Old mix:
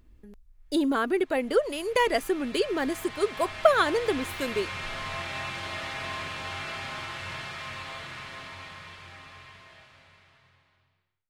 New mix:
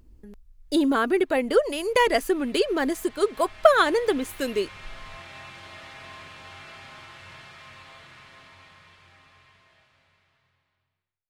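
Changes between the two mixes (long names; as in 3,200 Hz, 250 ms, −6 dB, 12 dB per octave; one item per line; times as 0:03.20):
speech +3.5 dB
background −8.5 dB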